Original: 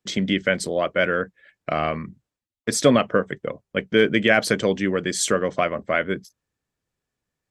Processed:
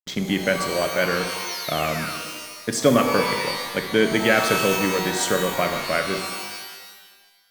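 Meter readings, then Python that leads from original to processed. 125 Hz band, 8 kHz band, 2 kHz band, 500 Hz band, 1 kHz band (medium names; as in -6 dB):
0.0 dB, +1.0 dB, +0.5 dB, -0.5 dB, +3.0 dB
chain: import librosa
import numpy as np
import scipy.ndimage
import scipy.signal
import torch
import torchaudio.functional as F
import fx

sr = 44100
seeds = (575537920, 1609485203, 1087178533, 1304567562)

y = fx.spec_paint(x, sr, seeds[0], shape='fall', start_s=1.46, length_s=0.72, low_hz=1100.0, high_hz=6500.0, level_db=-31.0)
y = fx.backlash(y, sr, play_db=-29.0)
y = fx.rev_shimmer(y, sr, seeds[1], rt60_s=1.3, semitones=12, shimmer_db=-2, drr_db=6.0)
y = y * 10.0 ** (-1.5 / 20.0)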